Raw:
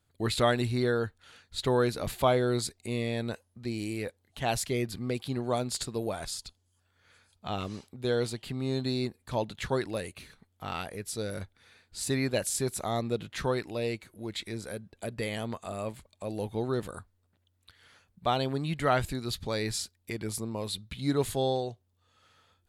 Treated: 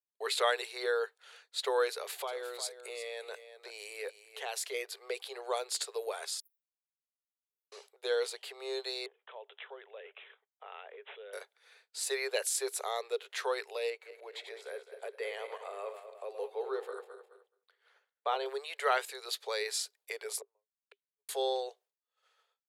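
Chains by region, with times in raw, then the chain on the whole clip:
1.92–4.74 compressor 5:1, threshold -30 dBFS + echo 0.354 s -12.5 dB
6.4–7.72 inverse Chebyshev band-stop 740–6200 Hz, stop band 70 dB + tilt +4.5 dB/oct
9.06–11.33 high shelf 6600 Hz -11 dB + compressor 4:1, threshold -43 dBFS + careless resampling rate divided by 6×, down none, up filtered
13.9–18.46 regenerating reverse delay 0.105 s, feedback 60%, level -8.5 dB + bell 9300 Hz -12.5 dB 2.8 oct
20.41–21.29 tone controls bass +12 dB, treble -13 dB + flipped gate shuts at -25 dBFS, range -39 dB + three-band expander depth 70%
whole clip: Chebyshev high-pass 400 Hz, order 8; expander -57 dBFS; dynamic EQ 650 Hz, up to -6 dB, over -46 dBFS, Q 2.9

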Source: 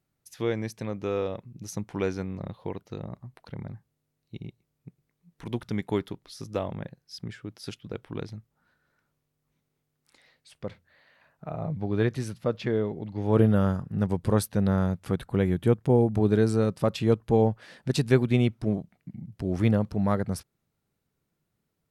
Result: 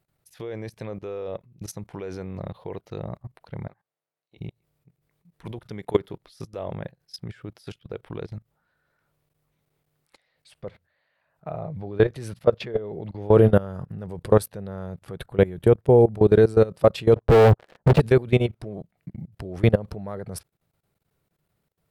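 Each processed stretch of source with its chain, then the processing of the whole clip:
3.67–4.37 HPF 800 Hz + tilt -3 dB/oct
17.16–18 LPF 1100 Hz + sample leveller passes 5
whole clip: dynamic EQ 430 Hz, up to +5 dB, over -38 dBFS, Q 1.8; level quantiser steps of 20 dB; fifteen-band EQ 250 Hz -6 dB, 630 Hz +3 dB, 6300 Hz -5 dB; gain +7.5 dB

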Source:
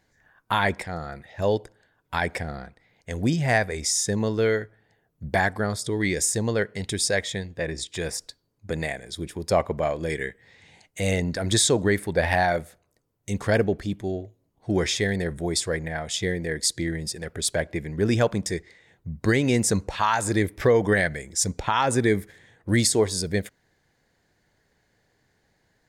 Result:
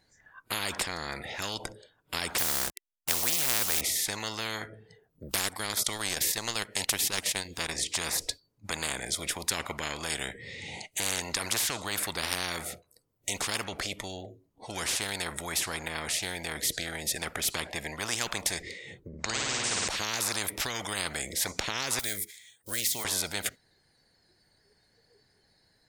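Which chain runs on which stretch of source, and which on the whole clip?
2.38–3.81 level-crossing sampler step -44.5 dBFS + tone controls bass -8 dB, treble +15 dB
5.31–7.75 high shelf 3000 Hz +10.5 dB + transient shaper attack -1 dB, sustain -12 dB + upward compressor, threshold -33 dBFS
19.08–19.88 rippled Chebyshev low-pass 8000 Hz, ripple 3 dB + flutter echo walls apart 9.3 m, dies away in 1.3 s
21.99–23.05 block floating point 7-bit + pre-emphasis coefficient 0.9
whole clip: spectral noise reduction 16 dB; spectral compressor 10:1; gain -6 dB

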